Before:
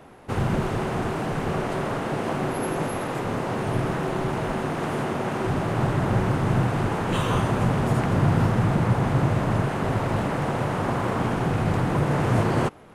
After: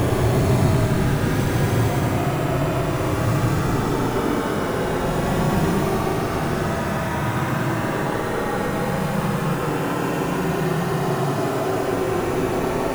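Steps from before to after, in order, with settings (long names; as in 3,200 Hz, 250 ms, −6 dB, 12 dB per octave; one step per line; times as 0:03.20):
floating-point word with a short mantissa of 2 bits
extreme stretch with random phases 37×, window 0.05 s, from 0:03.75
level +4 dB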